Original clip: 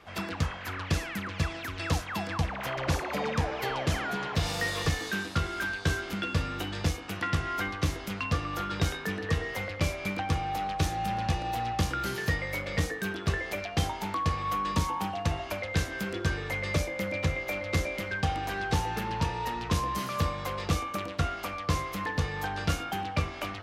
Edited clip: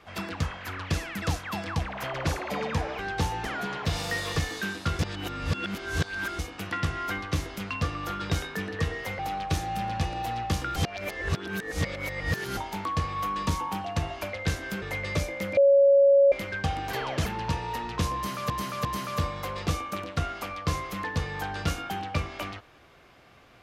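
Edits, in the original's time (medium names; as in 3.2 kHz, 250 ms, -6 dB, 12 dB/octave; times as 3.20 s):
1.22–1.85 s: delete
3.62–3.95 s: swap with 18.52–18.98 s
5.49–6.89 s: reverse
9.69–10.48 s: delete
12.05–13.86 s: reverse
16.11–16.41 s: delete
17.16–17.91 s: bleep 557 Hz -14.5 dBFS
19.87–20.22 s: loop, 3 plays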